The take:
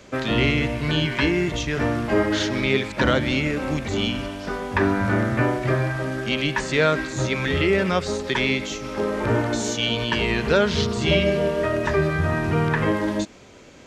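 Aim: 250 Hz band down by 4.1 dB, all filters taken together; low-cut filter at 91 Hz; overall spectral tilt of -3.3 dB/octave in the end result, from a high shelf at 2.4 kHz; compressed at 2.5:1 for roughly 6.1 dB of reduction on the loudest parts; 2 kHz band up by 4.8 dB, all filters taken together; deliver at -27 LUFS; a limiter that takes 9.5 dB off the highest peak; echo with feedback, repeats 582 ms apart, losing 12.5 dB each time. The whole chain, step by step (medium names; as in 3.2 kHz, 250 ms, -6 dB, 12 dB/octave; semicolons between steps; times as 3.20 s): high-pass 91 Hz; peaking EQ 250 Hz -5.5 dB; peaking EQ 2 kHz +8.5 dB; treble shelf 2.4 kHz -5 dB; compression 2.5:1, threshold -23 dBFS; peak limiter -16.5 dBFS; feedback delay 582 ms, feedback 24%, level -12.5 dB; trim -0.5 dB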